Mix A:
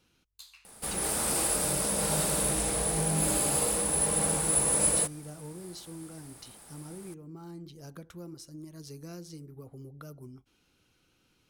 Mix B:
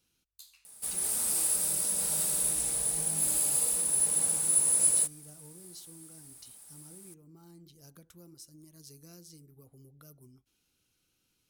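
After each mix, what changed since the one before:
speech: add bass shelf 440 Hz +5 dB; master: add pre-emphasis filter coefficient 0.8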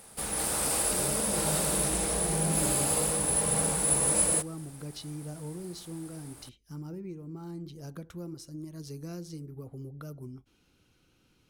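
background: entry -0.65 s; master: remove pre-emphasis filter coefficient 0.8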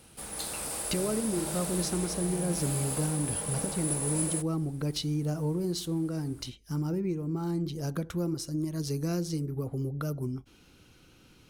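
speech +9.5 dB; background -7.0 dB

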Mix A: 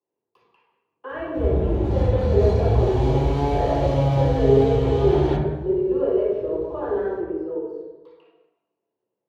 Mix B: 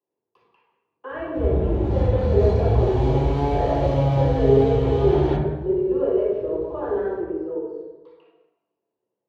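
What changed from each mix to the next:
master: add treble shelf 5.8 kHz -8 dB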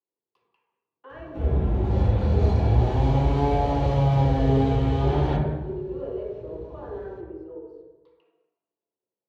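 speech: send -11.0 dB

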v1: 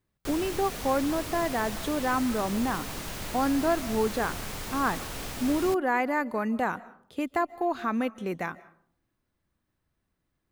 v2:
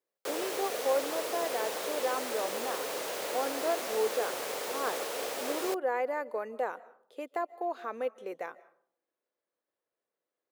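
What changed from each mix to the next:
speech -10.0 dB; master: add resonant high-pass 490 Hz, resonance Q 3.7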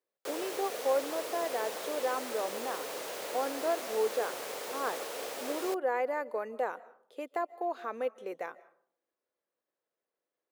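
background -3.5 dB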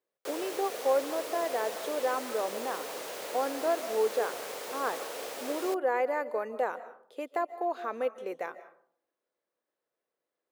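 speech: send +8.0 dB

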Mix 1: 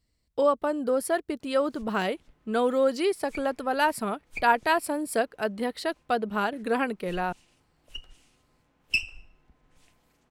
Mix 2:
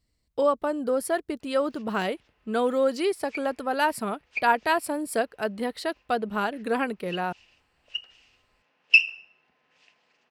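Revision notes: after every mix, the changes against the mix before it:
background: add cabinet simulation 310–6000 Hz, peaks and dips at 310 Hz -9 dB, 1.8 kHz +5 dB, 2.7 kHz +10 dB, 4.9 kHz +4 dB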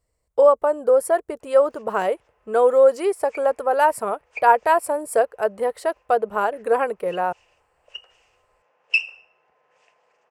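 master: add graphic EQ 250/500/1000/4000/8000 Hz -11/+11/+6/-11/+6 dB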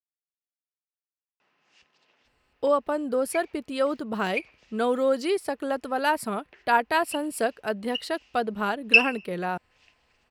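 speech: entry +2.25 s; master: add graphic EQ 250/500/1000/4000/8000 Hz +11/-11/-6/+11/-6 dB

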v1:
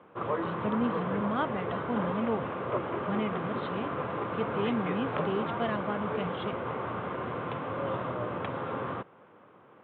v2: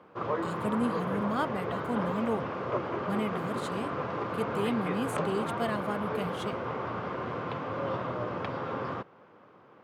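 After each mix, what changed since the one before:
master: remove steep low-pass 3.7 kHz 72 dB/octave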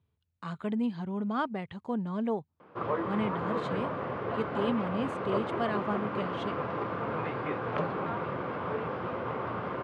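background: entry +2.60 s; master: add low-pass 3.7 kHz 12 dB/octave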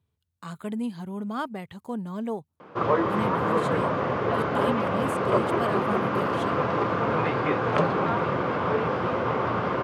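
background +8.5 dB; master: remove low-pass 3.7 kHz 12 dB/octave

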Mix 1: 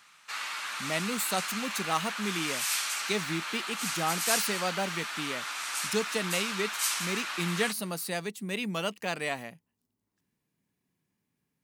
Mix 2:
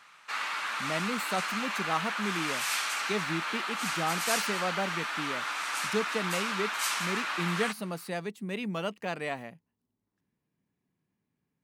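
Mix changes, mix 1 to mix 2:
background +6.0 dB; master: add treble shelf 3.3 kHz -12 dB

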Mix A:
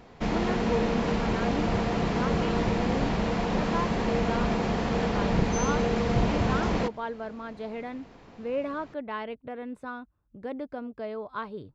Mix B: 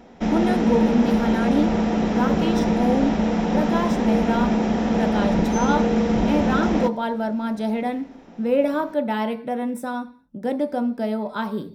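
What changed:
speech: remove tape spacing loss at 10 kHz 25 dB; reverb: on, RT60 0.45 s

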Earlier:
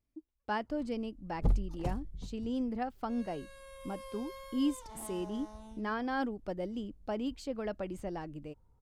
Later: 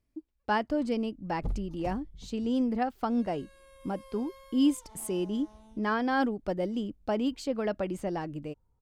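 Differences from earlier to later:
speech +6.5 dB; background -5.0 dB

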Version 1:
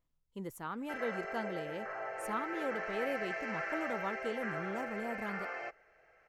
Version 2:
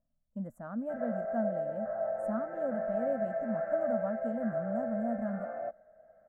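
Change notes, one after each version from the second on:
background: add tilt shelf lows +6.5 dB, about 920 Hz; master: add FFT filter 150 Hz 0 dB, 230 Hz +11 dB, 400 Hz -19 dB, 620 Hz +13 dB, 920 Hz -11 dB, 1.6 kHz -4 dB, 2.4 kHz -25 dB, 5 kHz -28 dB, 7.8 kHz -13 dB, 11 kHz -19 dB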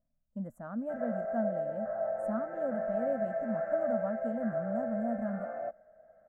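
background: remove distance through air 53 m

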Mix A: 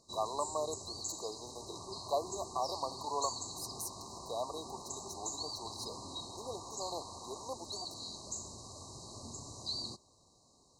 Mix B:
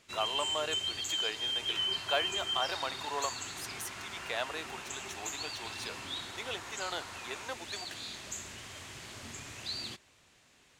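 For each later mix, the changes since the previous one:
first sound: remove low-pass 9.2 kHz 24 dB/octave; master: remove brick-wall FIR band-stop 1.2–3.8 kHz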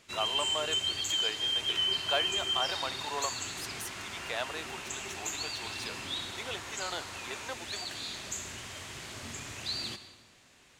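reverb: on, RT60 1.2 s

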